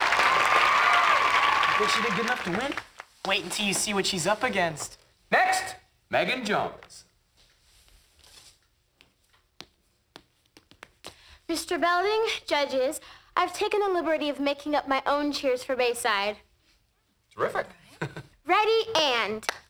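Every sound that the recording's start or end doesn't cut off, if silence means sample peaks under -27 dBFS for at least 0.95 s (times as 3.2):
9.61–16.31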